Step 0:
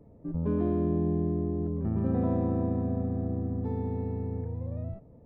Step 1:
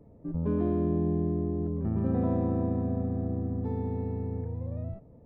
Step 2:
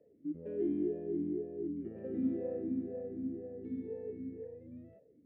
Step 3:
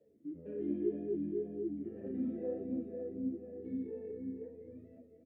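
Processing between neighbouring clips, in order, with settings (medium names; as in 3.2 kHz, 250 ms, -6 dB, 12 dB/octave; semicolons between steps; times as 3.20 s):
no audible change
talking filter e-i 2 Hz; trim +2.5 dB
feedback delay 241 ms, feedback 54%, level -10.5 dB; reverberation, pre-delay 20 ms, DRR 13 dB; three-phase chorus; trim +1 dB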